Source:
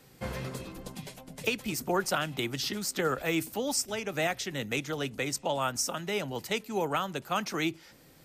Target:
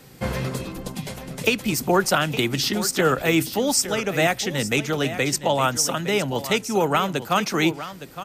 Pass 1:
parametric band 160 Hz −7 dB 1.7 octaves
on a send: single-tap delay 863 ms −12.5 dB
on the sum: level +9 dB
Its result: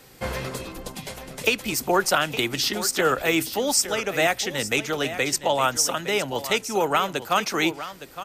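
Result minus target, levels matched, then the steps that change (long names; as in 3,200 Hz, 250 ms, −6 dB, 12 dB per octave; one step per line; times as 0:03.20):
125 Hz band −7.0 dB
change: parametric band 160 Hz +2 dB 1.7 octaves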